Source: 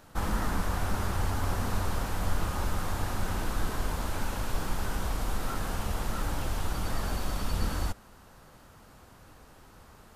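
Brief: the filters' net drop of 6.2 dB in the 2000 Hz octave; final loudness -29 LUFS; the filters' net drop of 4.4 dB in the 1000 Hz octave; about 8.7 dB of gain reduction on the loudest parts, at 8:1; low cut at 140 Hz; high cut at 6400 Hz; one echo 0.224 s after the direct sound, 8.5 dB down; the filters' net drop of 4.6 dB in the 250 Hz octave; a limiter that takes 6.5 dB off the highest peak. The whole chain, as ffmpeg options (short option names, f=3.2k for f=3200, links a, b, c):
-af "highpass=140,lowpass=6.4k,equalizer=f=250:t=o:g=-5,equalizer=f=1k:t=o:g=-3.5,equalizer=f=2k:t=o:g=-7,acompressor=threshold=-43dB:ratio=8,alimiter=level_in=15dB:limit=-24dB:level=0:latency=1,volume=-15dB,aecho=1:1:224:0.376,volume=19.5dB"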